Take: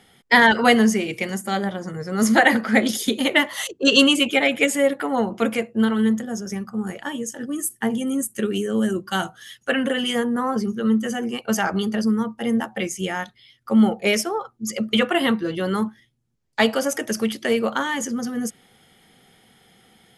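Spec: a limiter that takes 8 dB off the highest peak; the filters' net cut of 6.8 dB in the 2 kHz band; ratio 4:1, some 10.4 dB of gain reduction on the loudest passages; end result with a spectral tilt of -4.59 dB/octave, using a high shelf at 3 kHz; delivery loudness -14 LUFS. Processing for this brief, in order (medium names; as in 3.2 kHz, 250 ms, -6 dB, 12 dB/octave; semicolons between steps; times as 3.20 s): peaking EQ 2 kHz -7 dB; treble shelf 3 kHz -3.5 dB; compression 4:1, threshold -24 dBFS; trim +16 dB; peak limiter -4 dBFS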